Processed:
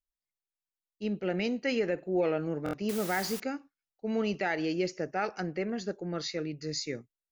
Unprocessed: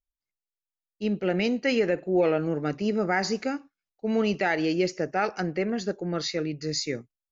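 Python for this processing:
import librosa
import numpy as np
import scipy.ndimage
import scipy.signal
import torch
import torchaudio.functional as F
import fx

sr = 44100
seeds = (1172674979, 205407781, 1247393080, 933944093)

y = fx.quant_dither(x, sr, seeds[0], bits=6, dither='triangular', at=(2.89, 3.4))
y = fx.buffer_glitch(y, sr, at_s=(2.64,), block=1024, repeats=3)
y = y * 10.0 ** (-5.5 / 20.0)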